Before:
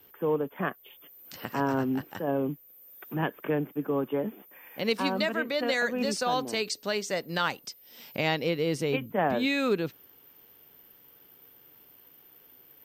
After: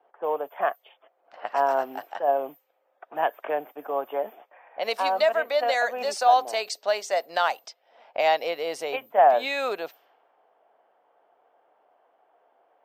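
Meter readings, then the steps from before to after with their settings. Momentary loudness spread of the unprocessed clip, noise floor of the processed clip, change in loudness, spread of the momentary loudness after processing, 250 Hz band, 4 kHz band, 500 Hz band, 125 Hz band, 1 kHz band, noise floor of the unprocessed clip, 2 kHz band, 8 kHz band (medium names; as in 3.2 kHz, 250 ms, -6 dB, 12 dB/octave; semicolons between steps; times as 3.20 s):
14 LU, -70 dBFS, +4.0 dB, 14 LU, -14.5 dB, +0.5 dB, +4.5 dB, under -20 dB, +10.0 dB, -57 dBFS, +1.5 dB, 0.0 dB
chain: level-controlled noise filter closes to 970 Hz, open at -28 dBFS; resonant high-pass 690 Hz, resonance Q 4.8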